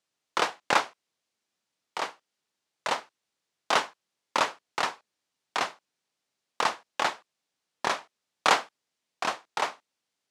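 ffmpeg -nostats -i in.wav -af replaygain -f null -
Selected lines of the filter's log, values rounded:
track_gain = +9.0 dB
track_peak = 0.355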